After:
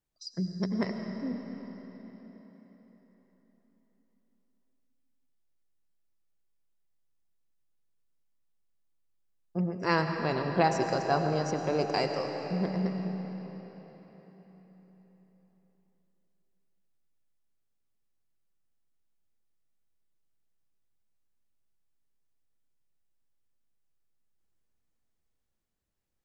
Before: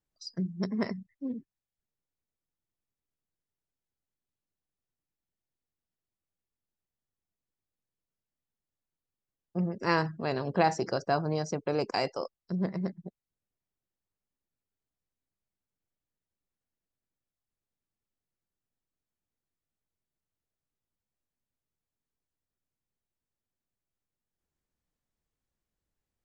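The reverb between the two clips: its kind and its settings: algorithmic reverb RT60 4.5 s, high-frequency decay 0.85×, pre-delay 60 ms, DRR 4.5 dB

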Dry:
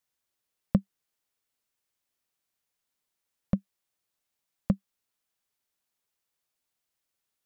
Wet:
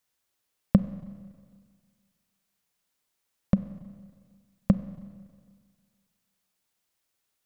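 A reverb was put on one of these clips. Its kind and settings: Schroeder reverb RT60 1.8 s, combs from 31 ms, DRR 13.5 dB; trim +4.5 dB

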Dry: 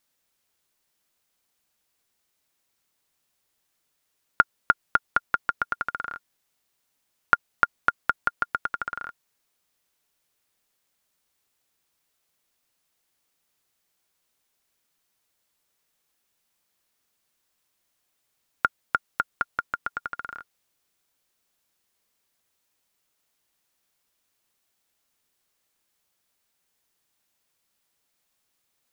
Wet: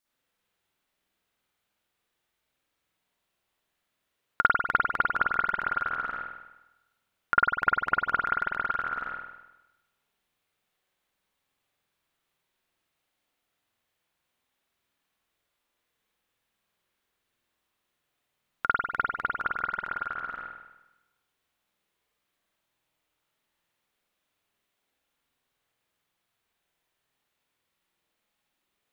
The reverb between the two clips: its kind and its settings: spring tank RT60 1 s, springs 48 ms, chirp 20 ms, DRR -9 dB; trim -9 dB

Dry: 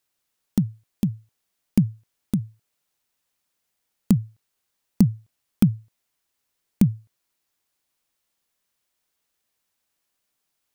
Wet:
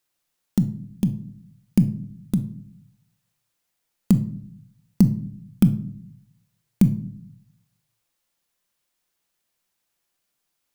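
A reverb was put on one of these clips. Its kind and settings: simulated room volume 830 m³, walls furnished, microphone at 0.85 m

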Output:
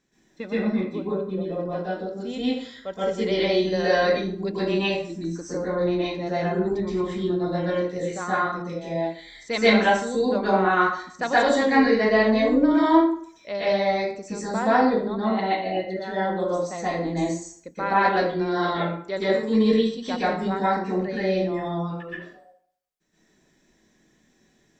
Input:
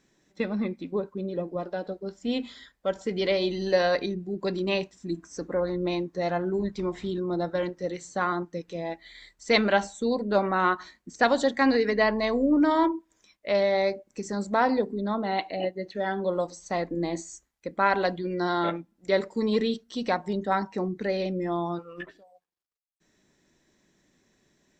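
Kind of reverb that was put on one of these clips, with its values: plate-style reverb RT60 0.54 s, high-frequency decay 0.75×, pre-delay 110 ms, DRR -9.5 dB; trim -6 dB

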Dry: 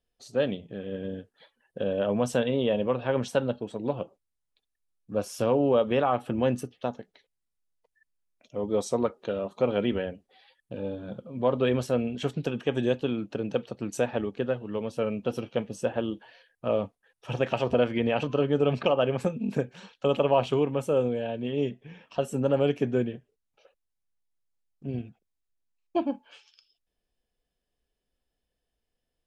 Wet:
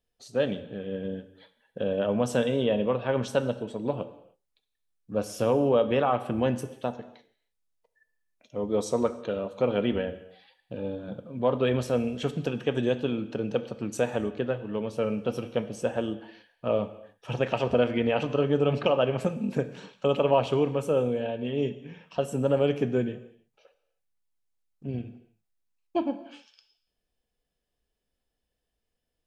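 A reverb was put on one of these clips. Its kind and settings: gated-style reverb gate 340 ms falling, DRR 11 dB

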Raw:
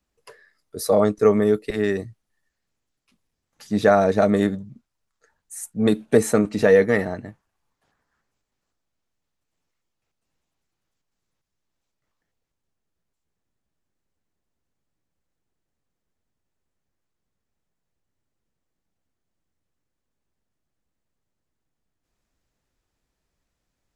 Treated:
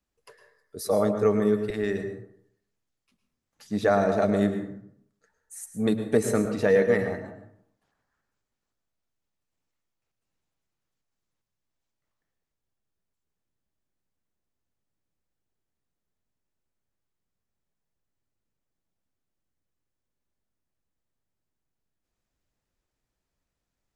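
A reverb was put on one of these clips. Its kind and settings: plate-style reverb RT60 0.69 s, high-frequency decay 0.5×, pre-delay 95 ms, DRR 7.5 dB; trim -6 dB

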